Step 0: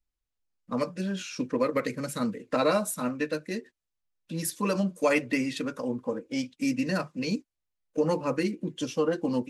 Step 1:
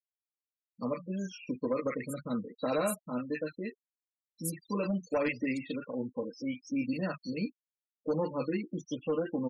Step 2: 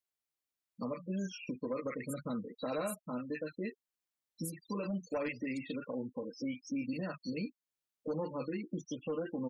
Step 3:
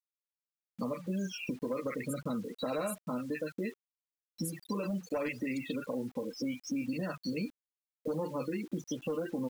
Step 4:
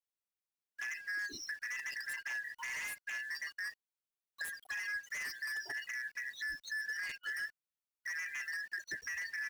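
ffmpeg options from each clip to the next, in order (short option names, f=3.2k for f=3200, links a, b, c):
-filter_complex "[0:a]acrossover=split=1300|4300[a][b][c];[a]adelay=100[d];[b]adelay=140[e];[d][e][c]amix=inputs=3:normalize=0,volume=19.5dB,asoftclip=hard,volume=-19.5dB,afftfilt=real='re*gte(hypot(re,im),0.0178)':imag='im*gte(hypot(re,im),0.0178)':win_size=1024:overlap=0.75,volume=-4.5dB"
-af "alimiter=level_in=8.5dB:limit=-24dB:level=0:latency=1:release=331,volume=-8.5dB,volume=3dB"
-af "acompressor=threshold=-45dB:ratio=2,acrusher=bits=10:mix=0:aa=0.000001,volume=8.5dB"
-filter_complex "[0:a]afftfilt=real='real(if(lt(b,272),68*(eq(floor(b/68),0)*2+eq(floor(b/68),1)*0+eq(floor(b/68),2)*3+eq(floor(b/68),3)*1)+mod(b,68),b),0)':imag='imag(if(lt(b,272),68*(eq(floor(b/68),0)*2+eq(floor(b/68),1)*0+eq(floor(b/68),2)*3+eq(floor(b/68),3)*1)+mod(b,68),b),0)':win_size=2048:overlap=0.75,acrossover=split=1500[a][b];[b]aeval=exprs='0.0178*(abs(mod(val(0)/0.0178+3,4)-2)-1)':c=same[c];[a][c]amix=inputs=2:normalize=0,volume=-3.5dB"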